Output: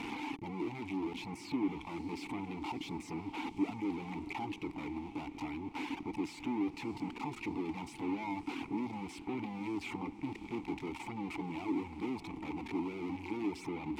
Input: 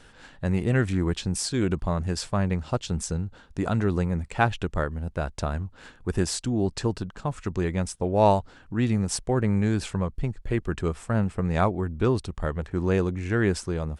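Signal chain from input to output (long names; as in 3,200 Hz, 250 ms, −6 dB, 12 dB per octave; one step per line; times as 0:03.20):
sign of each sample alone
reverb reduction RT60 1 s
formant filter u
feedback delay with all-pass diffusion 609 ms, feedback 53%, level −14 dB
level +3.5 dB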